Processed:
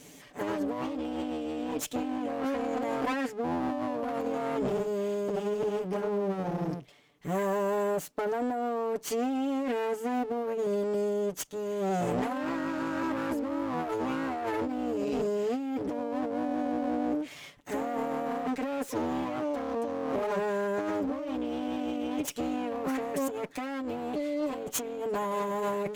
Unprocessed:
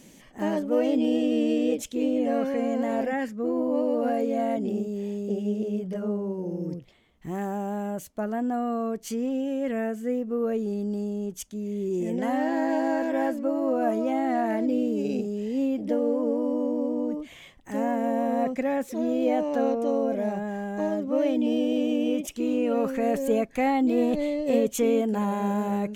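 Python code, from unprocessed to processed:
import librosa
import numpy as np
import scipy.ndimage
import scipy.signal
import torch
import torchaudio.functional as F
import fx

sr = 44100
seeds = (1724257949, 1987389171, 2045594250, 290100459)

y = fx.lower_of_two(x, sr, delay_ms=6.9)
y = fx.highpass(y, sr, hz=160.0, slope=6)
y = fx.over_compress(y, sr, threshold_db=-31.0, ratio=-1.0)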